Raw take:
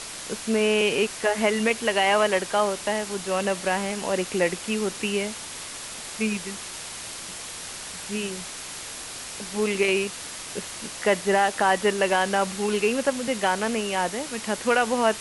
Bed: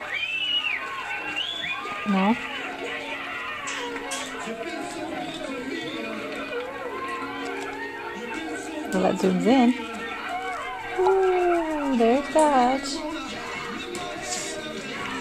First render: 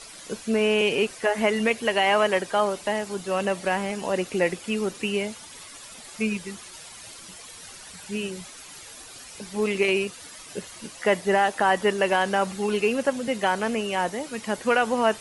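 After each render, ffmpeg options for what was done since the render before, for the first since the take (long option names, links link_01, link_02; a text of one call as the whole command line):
ffmpeg -i in.wav -af "afftdn=noise_reduction=11:noise_floor=-37" out.wav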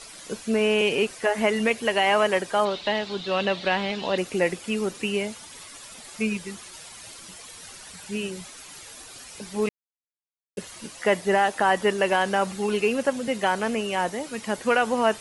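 ffmpeg -i in.wav -filter_complex "[0:a]asettb=1/sr,asplit=3[link_01][link_02][link_03];[link_01]atrim=end=2.654[link_04];[link_02]atrim=start=2.65:end=4.18,asetpts=PTS-STARTPTS,afade=type=in:duration=0.004:curve=qsin,afade=type=out:start_time=1.526:duration=0.004:curve=qsin,lowpass=frequency=3800:width_type=q:width=4.7[link_05];[link_03]atrim=start=4.176[link_06];[link_04][link_05]acrossfade=duration=0.004:curve1=hsin:curve2=qsin[link_07];[link_07][link_06]acrossfade=duration=0.004:curve1=qsin:curve2=hsin,asplit=3[link_08][link_09][link_10];[link_08]atrim=end=9.69,asetpts=PTS-STARTPTS,afade=type=out:start_time=9.686:duration=0.004:curve=hsin[link_11];[link_09]atrim=start=9.69:end=10.57,asetpts=PTS-STARTPTS,volume=0[link_12];[link_10]atrim=start=10.57,asetpts=PTS-STARTPTS,afade=type=in:duration=0.004:curve=hsin[link_13];[link_11][link_12][link_13]concat=n=3:v=0:a=1" out.wav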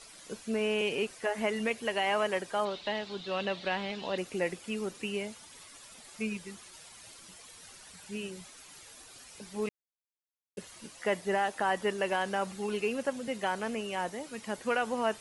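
ffmpeg -i in.wav -af "volume=-8.5dB" out.wav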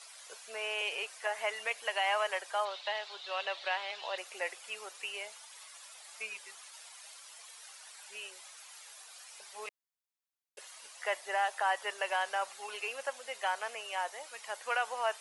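ffmpeg -i in.wav -af "highpass=frequency=640:width=0.5412,highpass=frequency=640:width=1.3066" out.wav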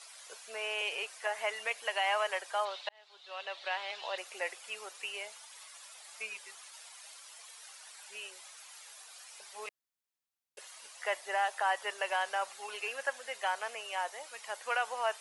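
ffmpeg -i in.wav -filter_complex "[0:a]asettb=1/sr,asplit=3[link_01][link_02][link_03];[link_01]atrim=end=12.864[link_04];[link_02]atrim=start=12.86:end=13.35,asetpts=PTS-STARTPTS,afade=type=in:duration=0.004:curve=qsin,afade=type=out:start_time=0.486:duration=0.004:curve=qsin,equalizer=frequency=1700:width=5.6:gain=8.5[link_05];[link_03]atrim=start=13.346[link_06];[link_04][link_05]acrossfade=duration=0.004:curve1=hsin:curve2=qsin[link_07];[link_07][link_06]acrossfade=duration=0.004:curve1=qsin:curve2=hsin,asplit=2[link_08][link_09];[link_08]atrim=end=2.89,asetpts=PTS-STARTPTS,afade=type=out:start_time=2.886:duration=0.004:curve=hsin[link_10];[link_09]atrim=start=2.89,asetpts=PTS-STARTPTS,afade=type=in:duration=1.02[link_11];[link_10][link_11]concat=n=2:v=0:a=1" out.wav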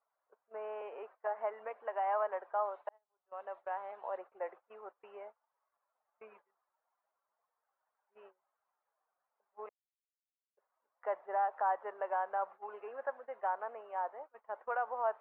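ffmpeg -i in.wav -af "agate=range=-22dB:threshold=-45dB:ratio=16:detection=peak,lowpass=frequency=1200:width=0.5412,lowpass=frequency=1200:width=1.3066" out.wav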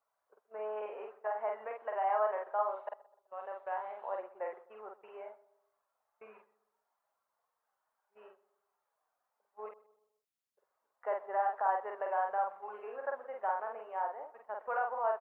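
ffmpeg -i in.wav -filter_complex "[0:a]asplit=2[link_01][link_02];[link_02]adelay=47,volume=-3dB[link_03];[link_01][link_03]amix=inputs=2:normalize=0,asplit=2[link_04][link_05];[link_05]adelay=127,lowpass=frequency=1300:poles=1,volume=-18dB,asplit=2[link_06][link_07];[link_07]adelay=127,lowpass=frequency=1300:poles=1,volume=0.47,asplit=2[link_08][link_09];[link_09]adelay=127,lowpass=frequency=1300:poles=1,volume=0.47,asplit=2[link_10][link_11];[link_11]adelay=127,lowpass=frequency=1300:poles=1,volume=0.47[link_12];[link_04][link_06][link_08][link_10][link_12]amix=inputs=5:normalize=0" out.wav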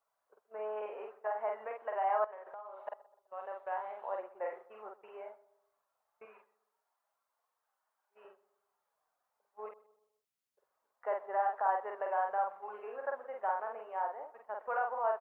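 ffmpeg -i in.wav -filter_complex "[0:a]asettb=1/sr,asplit=3[link_01][link_02][link_03];[link_01]atrim=end=2.244[link_04];[link_02]atrim=start=2.24:end=2.88,asetpts=PTS-STARTPTS,afade=type=in:duration=0.004:curve=qsin,afade=type=out:start_time=0.636:duration=0.004:curve=qsin,acompressor=threshold=-44dB:ratio=8:attack=3.2:release=140:knee=1:detection=peak[link_05];[link_03]atrim=start=2.876[link_06];[link_04][link_05]acrossfade=duration=0.004:curve1=hsin:curve2=qsin[link_07];[link_07][link_06]acrossfade=duration=0.004:curve1=qsin:curve2=hsin,asettb=1/sr,asplit=3[link_08][link_09][link_10];[link_08]atrim=end=4.394[link_11];[link_09]atrim=start=4.39:end=4.9,asetpts=PTS-STARTPTS,afade=type=in:duration=0.004:curve=qsin,afade=type=out:start_time=0.506:duration=0.004:curve=qsin,asplit=2[link_12][link_13];[link_13]adelay=34,volume=-5.5dB[link_14];[link_12][link_14]amix=inputs=2:normalize=0,atrim=end_sample=22491[link_15];[link_10]atrim=start=4.896[link_16];[link_11][link_15]acrossfade=duration=0.004:curve1=hsin:curve2=qsin[link_17];[link_17][link_16]acrossfade=duration=0.004:curve1=qsin:curve2=hsin,asettb=1/sr,asplit=3[link_18][link_19][link_20];[link_18]atrim=end=6.254[link_21];[link_19]atrim=start=6.25:end=8.25,asetpts=PTS-STARTPTS,afade=type=in:duration=0.004:curve=qsin,afade=type=out:start_time=1.996:duration=0.004:curve=qsin,highpass=frequency=450:poles=1[link_22];[link_20]atrim=start=8.246[link_23];[link_21][link_22]acrossfade=duration=0.004:curve1=hsin:curve2=qsin[link_24];[link_24][link_23]acrossfade=duration=0.004:curve1=qsin:curve2=hsin" out.wav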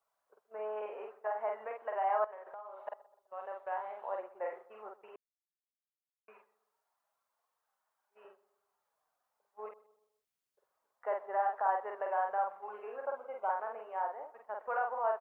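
ffmpeg -i in.wav -filter_complex "[0:a]asettb=1/sr,asplit=3[link_01][link_02][link_03];[link_01]atrim=end=13.054[link_04];[link_02]atrim=start=13.05:end=13.5,asetpts=PTS-STARTPTS,afade=type=in:duration=0.004:curve=qsin,afade=type=out:start_time=0.446:duration=0.004:curve=qsin,asuperstop=centerf=1800:order=20:qfactor=5[link_05];[link_03]atrim=start=13.496[link_06];[link_04][link_05]acrossfade=duration=0.004:curve1=hsin:curve2=qsin[link_07];[link_07][link_06]acrossfade=duration=0.004:curve1=qsin:curve2=hsin,asplit=3[link_08][link_09][link_10];[link_08]atrim=end=5.16,asetpts=PTS-STARTPTS,afade=type=out:start_time=5.156:duration=0.004:curve=hsin[link_11];[link_09]atrim=start=5.16:end=6.28,asetpts=PTS-STARTPTS,volume=0[link_12];[link_10]atrim=start=6.28,asetpts=PTS-STARTPTS,afade=type=in:duration=0.004:curve=hsin[link_13];[link_11][link_12][link_13]concat=n=3:v=0:a=1" out.wav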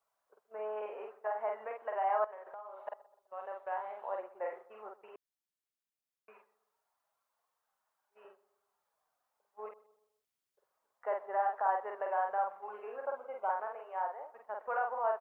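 ffmpeg -i in.wav -filter_complex "[0:a]asettb=1/sr,asplit=3[link_01][link_02][link_03];[link_01]atrim=end=13.674[link_04];[link_02]atrim=start=13.67:end=14.34,asetpts=PTS-STARTPTS,afade=type=in:duration=0.004:curve=qsin,afade=type=out:start_time=0.666:duration=0.004:curve=qsin,highpass=400[link_05];[link_03]atrim=start=14.336[link_06];[link_04][link_05]acrossfade=duration=0.004:curve1=hsin:curve2=qsin[link_07];[link_07][link_06]acrossfade=duration=0.004:curve1=qsin:curve2=hsin" out.wav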